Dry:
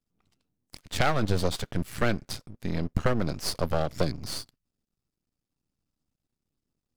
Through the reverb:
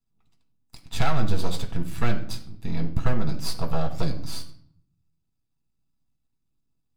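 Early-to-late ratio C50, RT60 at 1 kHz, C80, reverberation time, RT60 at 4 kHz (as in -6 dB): 11.0 dB, 0.60 s, 14.5 dB, 0.65 s, 0.45 s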